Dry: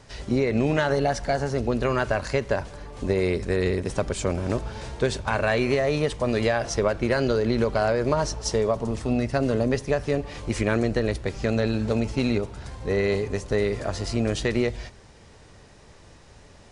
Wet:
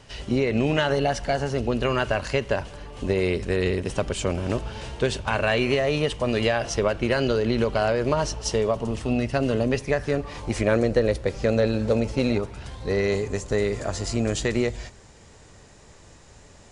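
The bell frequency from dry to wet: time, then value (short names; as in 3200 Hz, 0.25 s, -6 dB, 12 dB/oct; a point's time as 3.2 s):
bell +9.5 dB 0.29 oct
9.72 s 2900 Hz
10.75 s 520 Hz
12.3 s 520 Hz
12.52 s 2300 Hz
13.18 s 7200 Hz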